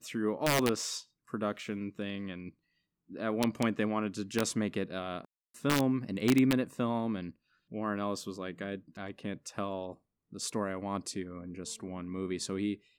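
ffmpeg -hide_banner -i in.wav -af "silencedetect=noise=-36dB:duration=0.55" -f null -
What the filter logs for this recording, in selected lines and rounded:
silence_start: 2.49
silence_end: 3.15 | silence_duration: 0.66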